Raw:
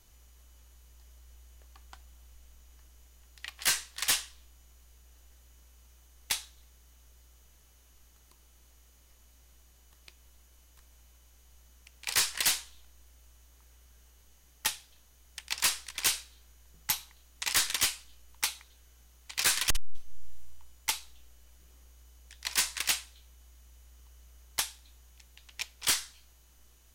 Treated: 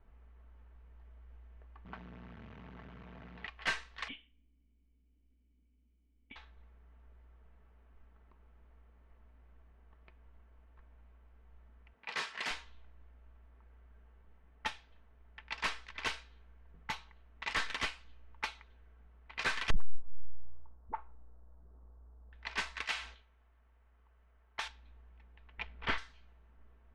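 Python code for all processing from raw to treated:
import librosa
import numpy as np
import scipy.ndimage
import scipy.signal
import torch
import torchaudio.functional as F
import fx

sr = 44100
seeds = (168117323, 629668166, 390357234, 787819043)

y = fx.chain(x, sr, fx.zero_step(step_db=-37.0),
    fx.highpass(hz=88.0, slope=24),
    fx.air_absorb(metres=94.0), at=(1.85, 3.47))
y = fx.chain(y, sr, fx.formant_cascade(vowel='i'),
    fx.high_shelf(hz=2800.0, db=11.0), at=(4.08, 6.36))
y = fx.chain(y, sr, fx.highpass(hz=170.0, slope=12),
    fx.transformer_sat(knee_hz=3800.0), at=(11.93, 12.51))
y = fx.chain(y, sr, fx.lowpass(hz=1200.0, slope=24),
    fx.dispersion(late='highs', ms=56.0, hz=410.0), at=(19.74, 22.33))
y = fx.chain(y, sr, fx.low_shelf(hz=460.0, db=-11.5),
    fx.sustainer(db_per_s=110.0), at=(22.84, 24.68))
y = fx.chain(y, sr, fx.lowpass(hz=5700.0, slope=12),
    fx.bass_treble(bass_db=5, treble_db=-14),
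    fx.leveller(passes=1), at=(25.58, 25.98))
y = scipy.signal.sosfilt(scipy.signal.butter(2, 2100.0, 'lowpass', fs=sr, output='sos'), y)
y = fx.env_lowpass(y, sr, base_hz=1600.0, full_db=-36.0)
y = y + 0.36 * np.pad(y, (int(4.5 * sr / 1000.0), 0))[:len(y)]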